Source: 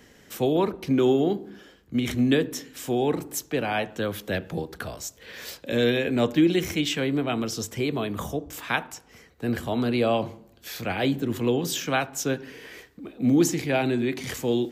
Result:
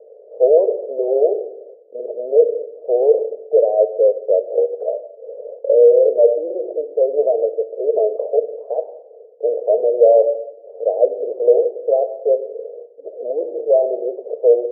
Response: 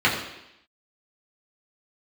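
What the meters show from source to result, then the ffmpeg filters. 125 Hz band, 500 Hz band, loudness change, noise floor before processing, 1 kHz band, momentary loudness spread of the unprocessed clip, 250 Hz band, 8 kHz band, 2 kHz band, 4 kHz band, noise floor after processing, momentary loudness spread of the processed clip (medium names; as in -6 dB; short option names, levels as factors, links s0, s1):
under -40 dB, +13.5 dB, +8.5 dB, -55 dBFS, +1.5 dB, 15 LU, under -10 dB, under -40 dB, under -40 dB, under -40 dB, -44 dBFS, 17 LU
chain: -filter_complex "[0:a]asplit=2[s0][s1];[1:a]atrim=start_sample=2205,adelay=74[s2];[s1][s2]afir=irnorm=-1:irlink=0,volume=0.0282[s3];[s0][s3]amix=inputs=2:normalize=0,apsyclip=11.2,asuperpass=centerf=530:order=8:qfactor=2.4,volume=0.841"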